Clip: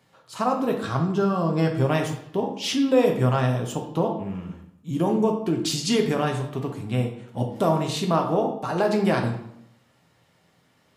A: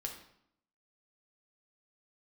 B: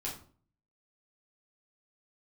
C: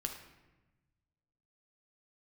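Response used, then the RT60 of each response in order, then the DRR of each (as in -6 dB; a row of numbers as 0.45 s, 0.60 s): A; 0.70 s, 0.45 s, 1.1 s; 2.0 dB, -5.0 dB, 3.0 dB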